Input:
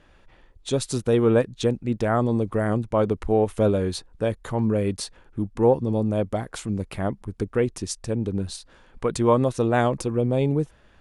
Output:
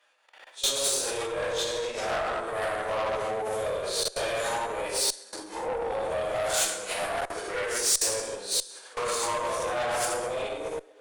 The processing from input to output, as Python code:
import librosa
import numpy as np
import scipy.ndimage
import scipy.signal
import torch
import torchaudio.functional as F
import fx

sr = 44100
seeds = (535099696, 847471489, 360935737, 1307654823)

y = fx.phase_scramble(x, sr, seeds[0], window_ms=200)
y = fx.recorder_agc(y, sr, target_db=-13.5, rise_db_per_s=21.0, max_gain_db=30)
y = fx.rev_plate(y, sr, seeds[1], rt60_s=1.6, hf_ratio=0.55, predelay_ms=0, drr_db=-5.0)
y = fx.level_steps(y, sr, step_db=21)
y = scipy.signal.sosfilt(scipy.signal.butter(4, 530.0, 'highpass', fs=sr, output='sos'), y)
y = fx.tube_stage(y, sr, drive_db=25.0, bias=0.5)
y = fx.high_shelf(y, sr, hz=2600.0, db=9.0)